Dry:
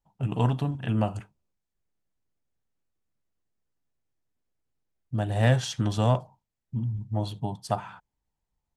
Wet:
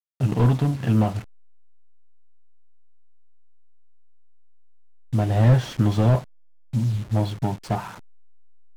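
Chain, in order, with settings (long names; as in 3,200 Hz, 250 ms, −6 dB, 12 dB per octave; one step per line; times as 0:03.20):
hold until the input has moved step −43 dBFS
slew-rate limiting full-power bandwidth 27 Hz
level +7 dB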